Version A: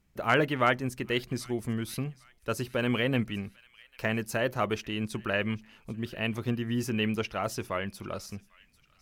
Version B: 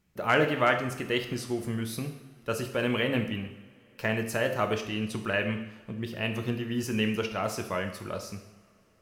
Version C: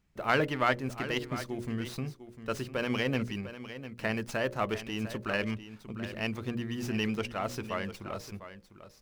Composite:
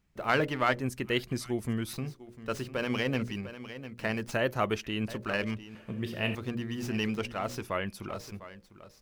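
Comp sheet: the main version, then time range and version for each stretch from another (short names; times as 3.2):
C
0.8–1.93 from A
4.33–5.08 from A
5.75–6.35 from B
7.62–8.09 from A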